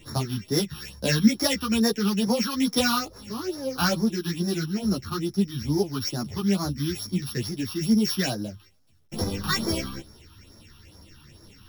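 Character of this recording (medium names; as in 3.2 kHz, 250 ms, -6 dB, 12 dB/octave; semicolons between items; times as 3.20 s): a buzz of ramps at a fixed pitch in blocks of 8 samples; phasing stages 6, 2.3 Hz, lowest notch 540–2800 Hz; a quantiser's noise floor 12-bit, dither none; a shimmering, thickened sound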